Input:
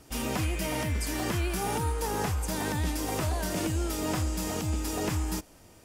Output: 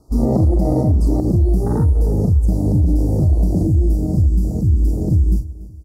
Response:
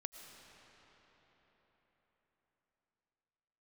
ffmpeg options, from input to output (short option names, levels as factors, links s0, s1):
-filter_complex "[0:a]asuperstop=centerf=2300:order=12:qfactor=0.79,lowshelf=f=490:g=11.5,asplit=2[s0][s1];[s1]adelay=40,volume=0.398[s2];[s0][s2]amix=inputs=2:normalize=0,afwtdn=0.0891,asetnsamples=n=441:p=0,asendcmd='1.2 equalizer g -8.5;3.63 equalizer g -15',equalizer=f=1100:w=0.36:g=4.5,aecho=1:1:289|578|867:0.106|0.0455|0.0196,alimiter=level_in=5.62:limit=0.891:release=50:level=0:latency=1,volume=0.473"